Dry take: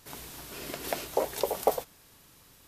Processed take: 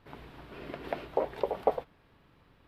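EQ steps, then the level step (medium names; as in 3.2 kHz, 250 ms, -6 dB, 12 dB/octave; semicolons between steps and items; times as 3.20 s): distance through air 440 m; 0.0 dB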